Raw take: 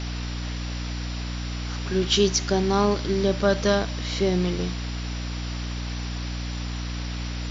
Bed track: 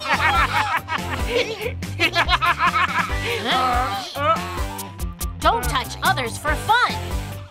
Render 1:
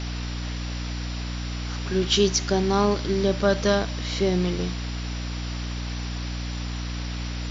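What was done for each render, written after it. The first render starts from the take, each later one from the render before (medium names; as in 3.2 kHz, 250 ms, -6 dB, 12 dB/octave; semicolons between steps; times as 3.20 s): no audible change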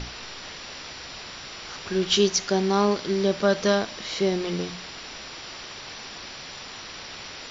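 hum notches 60/120/180/240/300 Hz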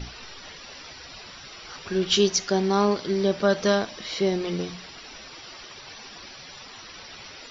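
noise reduction 11 dB, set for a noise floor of -40 dBFS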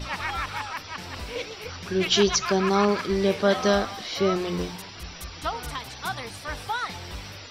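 add bed track -12.5 dB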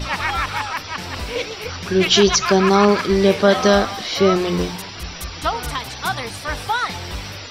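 trim +8 dB; peak limiter -3 dBFS, peak gain reduction 3 dB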